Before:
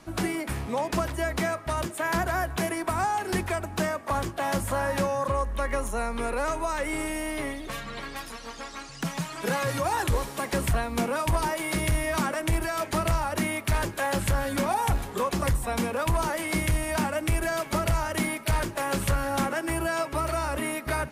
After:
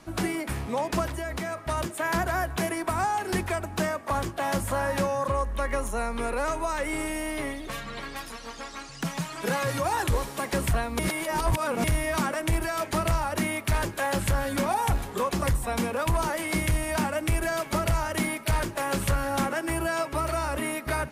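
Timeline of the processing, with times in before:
0:01.08–0:01.66: downward compressor, threshold −28 dBFS
0:10.99–0:11.84: reverse

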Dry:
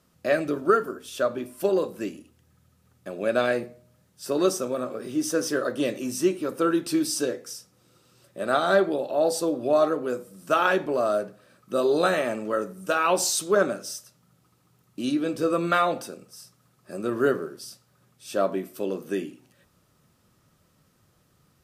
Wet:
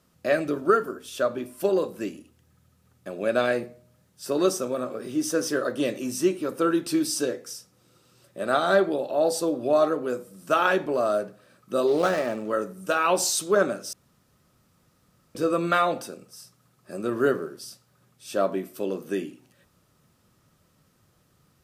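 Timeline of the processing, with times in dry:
0:11.87–0:12.49: running median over 15 samples
0:13.93–0:15.35: fill with room tone

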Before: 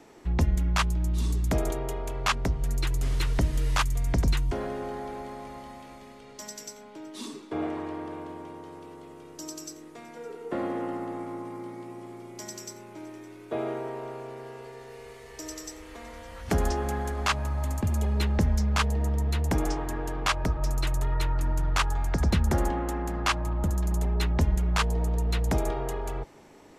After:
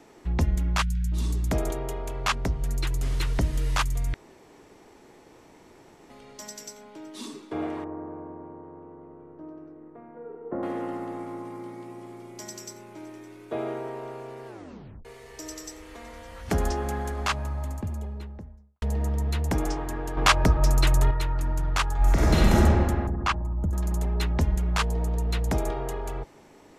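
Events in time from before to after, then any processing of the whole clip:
0:00.82–0:01.12: time-frequency box erased 250–1,300 Hz
0:04.14–0:06.10: fill with room tone
0:07.84–0:10.63: Bessel low-pass filter 980 Hz, order 4
0:14.47: tape stop 0.58 s
0:17.08–0:18.82: fade out and dull
0:20.17–0:21.11: clip gain +7 dB
0:21.97–0:22.55: thrown reverb, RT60 2 s, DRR −7 dB
0:23.07–0:23.73: spectral envelope exaggerated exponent 1.5

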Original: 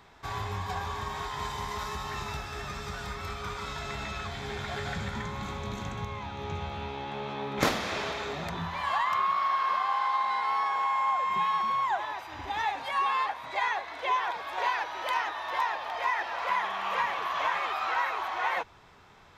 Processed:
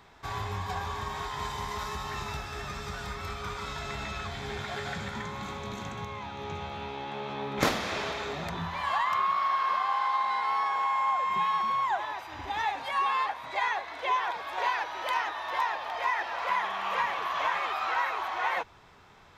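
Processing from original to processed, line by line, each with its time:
0:04.62–0:07.30: high-pass filter 140 Hz 6 dB per octave

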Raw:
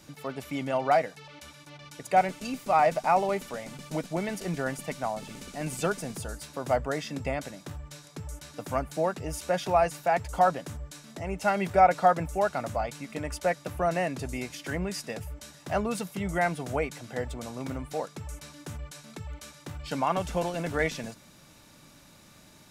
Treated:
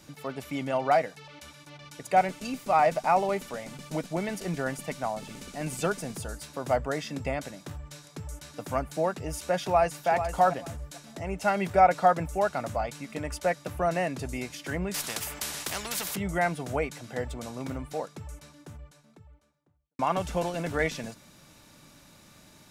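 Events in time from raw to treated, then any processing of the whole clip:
0:09.60–0:10.09: delay throw 440 ms, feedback 20%, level −9 dB
0:14.94–0:16.16: every bin compressed towards the loudest bin 4 to 1
0:17.54–0:19.99: fade out and dull

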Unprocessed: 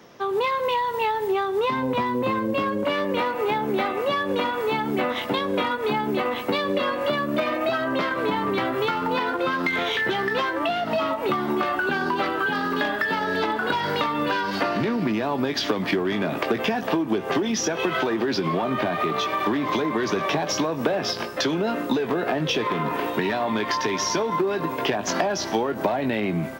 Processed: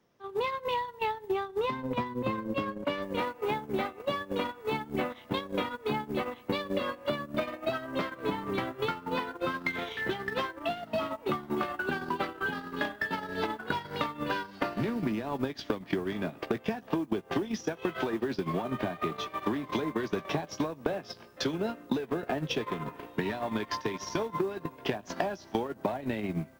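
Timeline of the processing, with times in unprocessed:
0:03.02: noise floor change −69 dB −53 dB
whole clip: noise gate −22 dBFS, range −23 dB; low-shelf EQ 140 Hz +10.5 dB; downward compressor 5 to 1, threshold −27 dBFS

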